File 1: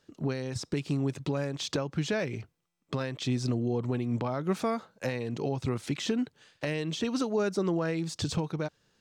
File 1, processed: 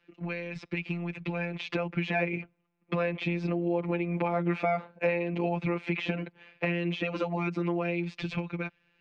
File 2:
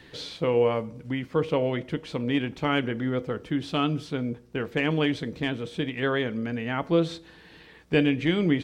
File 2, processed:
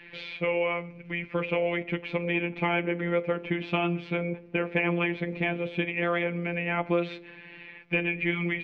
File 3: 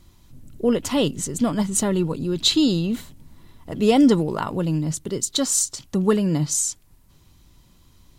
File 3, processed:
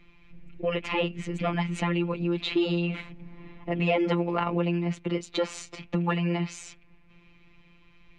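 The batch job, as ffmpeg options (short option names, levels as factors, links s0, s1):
-filter_complex "[0:a]afftfilt=real='hypot(re,im)*cos(PI*b)':imag='0':win_size=1024:overlap=0.75,acrossover=split=130|890[s0][s1][s2];[s1]dynaudnorm=f=240:g=17:m=3.98[s3];[s0][s3][s2]amix=inputs=3:normalize=0,lowpass=f=2400:t=q:w=6.9,acrossover=split=660|1500[s4][s5][s6];[s4]acompressor=threshold=0.0398:ratio=4[s7];[s5]acompressor=threshold=0.0355:ratio=4[s8];[s6]acompressor=threshold=0.0251:ratio=4[s9];[s7][s8][s9]amix=inputs=3:normalize=0"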